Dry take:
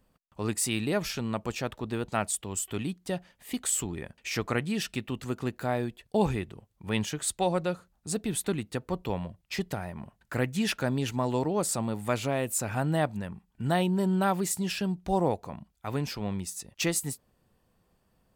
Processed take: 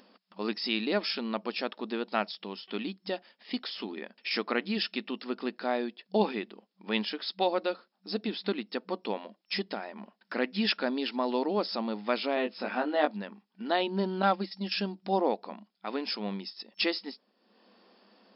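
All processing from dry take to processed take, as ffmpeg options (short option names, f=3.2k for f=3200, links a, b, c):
-filter_complex "[0:a]asettb=1/sr,asplit=3[a][b][c];[a]atrim=end=12.354[d];[b]atrim=start=12.35:end=13.11,asetpts=PTS-STARTPTS,afade=t=in:d=0.004:c=qsin,afade=t=out:st=0.756:d=0.004:c=qsin,highpass=100,lowpass=3.9k,asplit=2[e][f];[f]adelay=20,volume=-4dB[g];[e][g]amix=inputs=2:normalize=0,atrim=end_sample=33516[h];[c]atrim=start=13.106[i];[d][h]acrossfade=d=0.004:c1=hsin:c2=qsin[j];[j][i]acrossfade=d=0.004:c1=qsin:c2=hsin,asettb=1/sr,asplit=3[k][l][m];[k]atrim=end=14.224[n];[l]atrim=start=14.22:end=14.72,asetpts=PTS-STARTPTS,afade=t=in:d=0.004:c=qsin,afade=t=out:st=0.496:d=0.004:c=qsin,agate=range=-13dB:threshold=-30dB:ratio=16:release=100:detection=peak,aecho=1:1:3.7:0.43,atrim=end_sample=22050[o];[m]atrim=start=14.716[p];[n][o]acrossfade=d=0.004:c1=hsin:c2=qsin[q];[q][p]acrossfade=d=0.004:c1=qsin:c2=hsin,afftfilt=real='re*between(b*sr/4096,190,5400)':imag='im*between(b*sr/4096,190,5400)':win_size=4096:overlap=0.75,bass=f=250:g=-2,treble=f=4k:g=10,acompressor=mode=upward:threshold=-49dB:ratio=2.5"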